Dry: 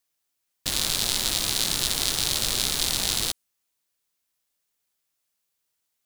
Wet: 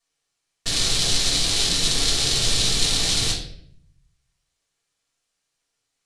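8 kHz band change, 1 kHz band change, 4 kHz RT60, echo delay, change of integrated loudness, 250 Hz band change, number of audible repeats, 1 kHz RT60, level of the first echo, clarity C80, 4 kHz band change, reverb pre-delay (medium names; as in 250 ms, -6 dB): +3.0 dB, +1.5 dB, 0.50 s, no echo, +3.5 dB, +5.5 dB, no echo, 0.55 s, no echo, 9.0 dB, +5.0 dB, 3 ms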